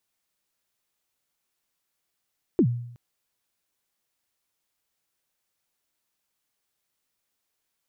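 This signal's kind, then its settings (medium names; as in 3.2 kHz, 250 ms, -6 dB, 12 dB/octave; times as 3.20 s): kick drum length 0.37 s, from 400 Hz, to 120 Hz, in 74 ms, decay 0.71 s, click off, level -13.5 dB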